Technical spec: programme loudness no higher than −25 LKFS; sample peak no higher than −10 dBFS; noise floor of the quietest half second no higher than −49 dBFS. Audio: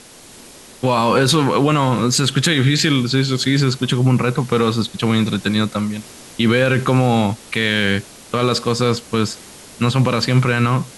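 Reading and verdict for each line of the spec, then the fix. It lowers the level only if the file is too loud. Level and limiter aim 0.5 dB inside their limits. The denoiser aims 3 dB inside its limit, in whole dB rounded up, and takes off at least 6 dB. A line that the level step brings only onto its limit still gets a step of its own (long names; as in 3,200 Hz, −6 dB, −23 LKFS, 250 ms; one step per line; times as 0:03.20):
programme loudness −17.0 LKFS: out of spec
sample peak −5.0 dBFS: out of spec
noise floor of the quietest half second −42 dBFS: out of spec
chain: level −8.5 dB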